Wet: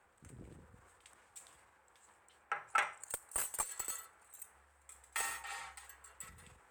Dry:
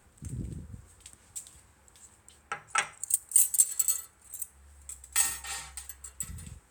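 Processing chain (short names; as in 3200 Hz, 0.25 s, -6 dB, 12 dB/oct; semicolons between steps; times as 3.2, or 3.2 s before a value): transient shaper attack +1 dB, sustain +5 dB; one-sided clip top -21 dBFS; three-band isolator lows -17 dB, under 440 Hz, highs -13 dB, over 2500 Hz; gain -2 dB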